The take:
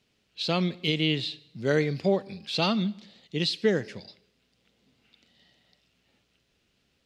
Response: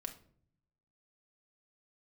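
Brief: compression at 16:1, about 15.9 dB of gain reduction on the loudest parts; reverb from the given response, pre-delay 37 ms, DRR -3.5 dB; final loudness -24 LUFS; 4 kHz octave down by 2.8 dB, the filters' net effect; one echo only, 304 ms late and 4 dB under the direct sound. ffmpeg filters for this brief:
-filter_complex "[0:a]equalizer=f=4000:t=o:g=-3.5,acompressor=threshold=0.02:ratio=16,aecho=1:1:304:0.631,asplit=2[s0][s1];[1:a]atrim=start_sample=2205,adelay=37[s2];[s1][s2]afir=irnorm=-1:irlink=0,volume=2[s3];[s0][s3]amix=inputs=2:normalize=0,volume=2.82"

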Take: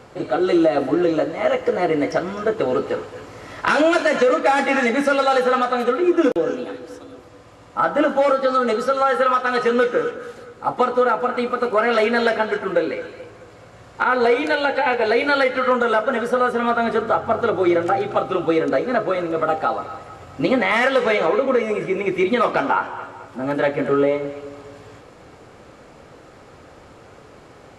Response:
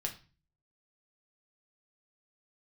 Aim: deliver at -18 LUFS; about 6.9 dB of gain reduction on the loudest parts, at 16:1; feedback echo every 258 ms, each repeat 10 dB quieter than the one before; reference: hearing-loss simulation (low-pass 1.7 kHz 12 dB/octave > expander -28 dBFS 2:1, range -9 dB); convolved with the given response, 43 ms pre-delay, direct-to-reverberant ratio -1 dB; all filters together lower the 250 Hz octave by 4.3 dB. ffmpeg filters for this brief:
-filter_complex "[0:a]equalizer=f=250:t=o:g=-6,acompressor=threshold=0.1:ratio=16,aecho=1:1:258|516|774|1032:0.316|0.101|0.0324|0.0104,asplit=2[s0][s1];[1:a]atrim=start_sample=2205,adelay=43[s2];[s1][s2]afir=irnorm=-1:irlink=0,volume=1[s3];[s0][s3]amix=inputs=2:normalize=0,lowpass=1700,agate=range=0.355:threshold=0.0398:ratio=2,volume=1.68"

